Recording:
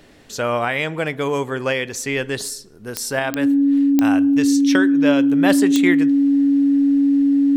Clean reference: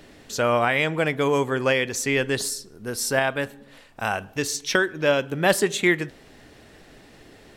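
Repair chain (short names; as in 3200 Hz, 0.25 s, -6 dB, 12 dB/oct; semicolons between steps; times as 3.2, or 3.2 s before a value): de-click; notch 280 Hz, Q 30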